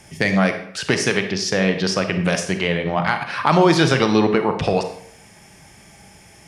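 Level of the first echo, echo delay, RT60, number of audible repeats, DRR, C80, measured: none, none, 0.70 s, none, 6.5 dB, 11.5 dB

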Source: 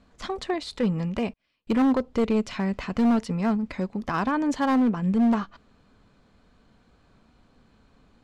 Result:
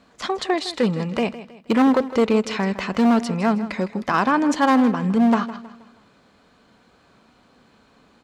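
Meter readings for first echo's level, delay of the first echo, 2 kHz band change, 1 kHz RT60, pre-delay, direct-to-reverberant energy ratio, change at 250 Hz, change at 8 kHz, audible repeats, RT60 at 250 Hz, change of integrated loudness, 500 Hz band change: -15.0 dB, 0.159 s, +8.0 dB, none, none, none, +4.0 dB, n/a, 3, none, +5.0 dB, +6.5 dB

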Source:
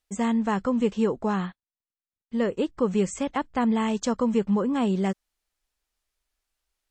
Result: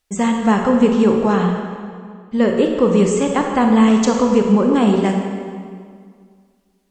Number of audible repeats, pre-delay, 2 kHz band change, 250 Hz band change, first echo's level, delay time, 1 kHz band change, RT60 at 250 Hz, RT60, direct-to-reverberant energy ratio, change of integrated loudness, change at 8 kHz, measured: none, 23 ms, +10.0 dB, +10.5 dB, none, none, +10.0 dB, 2.2 s, 2.0 s, 2.0 dB, +10.0 dB, +9.5 dB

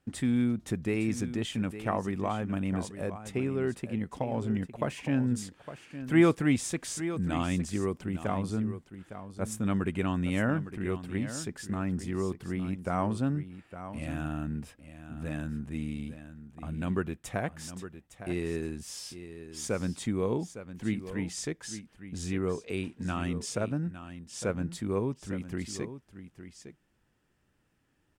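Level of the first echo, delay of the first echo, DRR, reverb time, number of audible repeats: -12.0 dB, 0.859 s, none, none, 1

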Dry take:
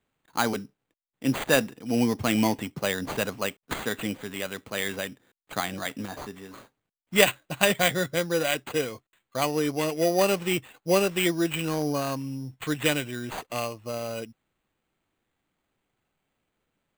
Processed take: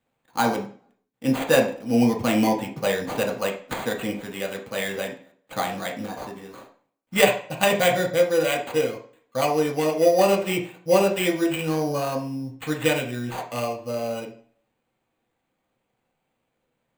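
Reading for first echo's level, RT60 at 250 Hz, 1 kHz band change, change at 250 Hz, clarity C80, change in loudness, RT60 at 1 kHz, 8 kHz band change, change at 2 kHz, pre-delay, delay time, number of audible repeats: none, 0.55 s, +5.0 dB, +3.0 dB, 12.5 dB, +3.5 dB, 0.45 s, -0.5 dB, +1.0 dB, 3 ms, none, none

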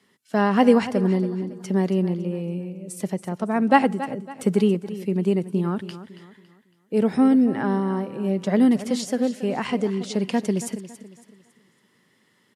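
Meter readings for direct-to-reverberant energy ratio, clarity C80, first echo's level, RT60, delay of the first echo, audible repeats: none, none, -14.0 dB, none, 0.278 s, 3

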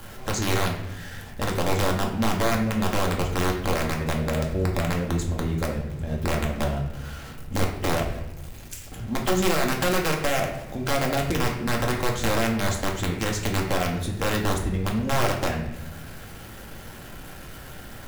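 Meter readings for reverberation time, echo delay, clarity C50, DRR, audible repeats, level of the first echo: 0.75 s, none, 6.0 dB, -0.5 dB, none, none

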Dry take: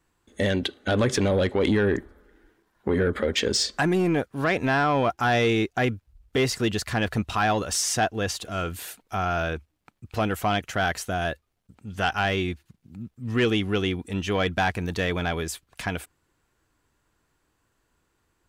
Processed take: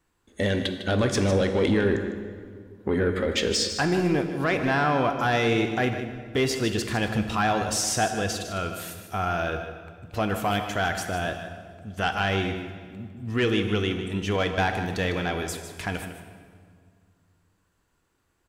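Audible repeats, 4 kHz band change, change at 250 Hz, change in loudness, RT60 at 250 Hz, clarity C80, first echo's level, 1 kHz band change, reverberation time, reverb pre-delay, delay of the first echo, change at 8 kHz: 1, -0.5 dB, 0.0 dB, -0.5 dB, 2.6 s, 7.5 dB, -11.5 dB, -0.5 dB, 2.0 s, 11 ms, 0.153 s, -0.5 dB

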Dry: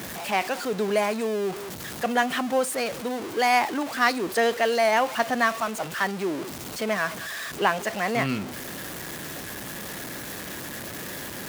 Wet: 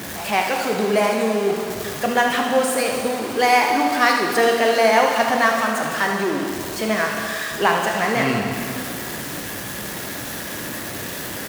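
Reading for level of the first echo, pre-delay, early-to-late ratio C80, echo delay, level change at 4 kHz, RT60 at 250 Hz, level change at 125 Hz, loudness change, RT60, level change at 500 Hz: -9.0 dB, 6 ms, 4.0 dB, 75 ms, +6.0 dB, 2.5 s, +5.5 dB, +6.0 dB, 2.5 s, +6.0 dB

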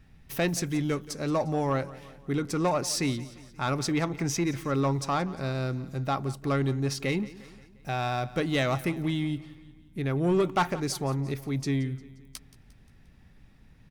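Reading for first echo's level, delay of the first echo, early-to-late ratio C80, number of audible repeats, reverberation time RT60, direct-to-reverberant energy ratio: -18.5 dB, 0.176 s, none, 3, none, none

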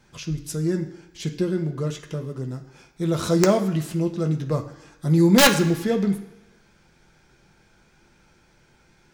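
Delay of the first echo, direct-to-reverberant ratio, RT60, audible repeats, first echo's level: none, 2.0 dB, 1.0 s, none, none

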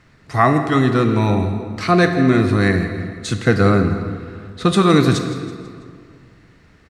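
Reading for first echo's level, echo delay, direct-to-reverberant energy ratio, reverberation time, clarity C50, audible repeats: -15.0 dB, 0.164 s, 6.0 dB, 2.1 s, 7.0 dB, 4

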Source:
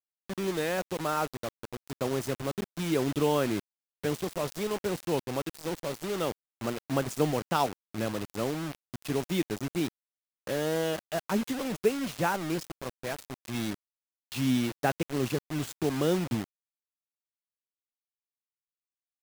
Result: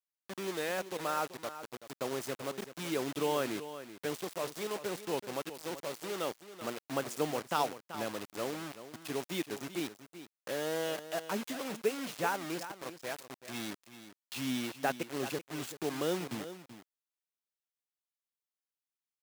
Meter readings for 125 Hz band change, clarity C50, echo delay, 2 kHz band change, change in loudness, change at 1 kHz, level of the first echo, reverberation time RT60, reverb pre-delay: -12.5 dB, none, 0.383 s, -3.0 dB, -5.5 dB, -3.5 dB, -12.5 dB, none, none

